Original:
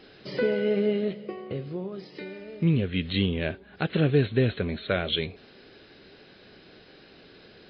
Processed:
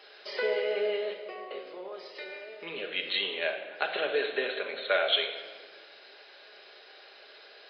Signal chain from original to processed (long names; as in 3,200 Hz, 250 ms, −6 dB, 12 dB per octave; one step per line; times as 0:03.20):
high-pass filter 540 Hz 24 dB per octave
rectangular room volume 1,800 cubic metres, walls mixed, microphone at 1.3 metres
level +1 dB